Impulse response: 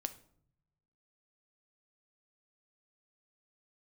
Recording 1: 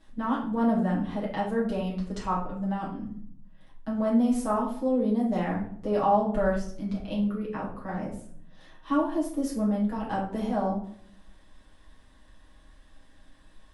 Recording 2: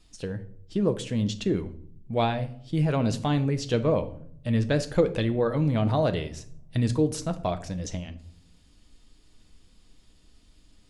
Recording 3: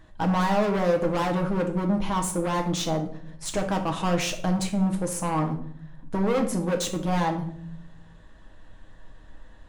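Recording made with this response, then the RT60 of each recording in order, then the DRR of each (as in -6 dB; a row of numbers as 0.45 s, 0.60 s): 2; 0.60 s, 0.65 s, 0.60 s; -6.5 dB, 9.0 dB, 3.0 dB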